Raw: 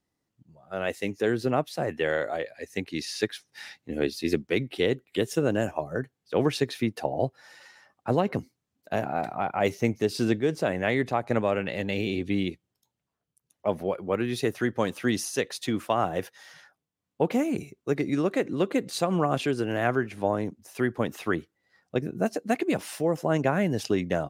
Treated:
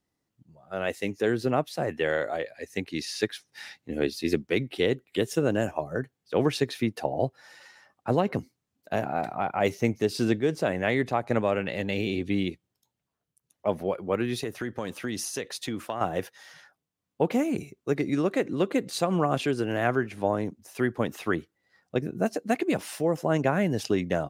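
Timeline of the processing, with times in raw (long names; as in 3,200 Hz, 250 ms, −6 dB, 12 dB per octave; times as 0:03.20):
0:14.38–0:16.01: downward compressor 5 to 1, threshold −27 dBFS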